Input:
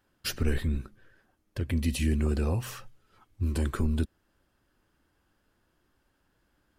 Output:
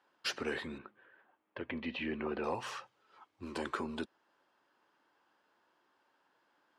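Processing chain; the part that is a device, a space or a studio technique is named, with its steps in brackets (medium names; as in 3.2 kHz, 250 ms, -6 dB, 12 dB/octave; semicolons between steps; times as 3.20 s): intercom (band-pass 400–4900 Hz; peaking EQ 940 Hz +7 dB 0.56 oct; saturation -23 dBFS, distortion -24 dB); 0.78–2.44 s: low-pass 3.1 kHz 24 dB/octave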